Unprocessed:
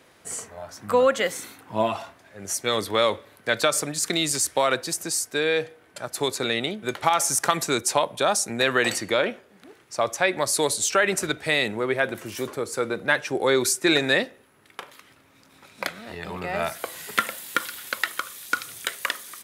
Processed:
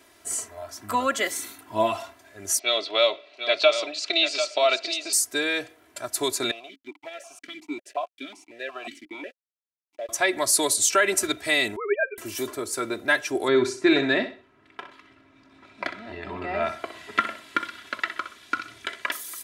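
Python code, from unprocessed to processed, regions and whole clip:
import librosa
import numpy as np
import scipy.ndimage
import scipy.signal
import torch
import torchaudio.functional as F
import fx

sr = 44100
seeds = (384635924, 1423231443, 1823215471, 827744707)

y = fx.chain(x, sr, fx.cabinet(low_hz=500.0, low_slope=12, high_hz=4700.0, hz=(630.0, 980.0, 1700.0, 2600.0, 4200.0), db=(8, -7, -9, 10, 5)),
    fx.echo_single(ms=744, db=-9.0), at=(2.59, 5.13))
y = fx.chain(y, sr, fx.sample_gate(floor_db=-28.5),
    fx.vowel_held(hz=5.5), at=(6.51, 10.09))
y = fx.chain(y, sr, fx.sine_speech(),
    fx.notch(hz=670.0, q=14.0), at=(11.76, 12.18))
y = fx.chain(y, sr, fx.lowpass(hz=2800.0, slope=12),
    fx.peak_eq(hz=160.0, db=7.0, octaves=1.1),
    fx.echo_feedback(ms=63, feedback_pct=29, wet_db=-10.5), at=(13.48, 19.12))
y = fx.high_shelf(y, sr, hz=5000.0, db=7.0)
y = y + 0.82 * np.pad(y, (int(3.0 * sr / 1000.0), 0))[:len(y)]
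y = F.gain(torch.from_numpy(y), -3.5).numpy()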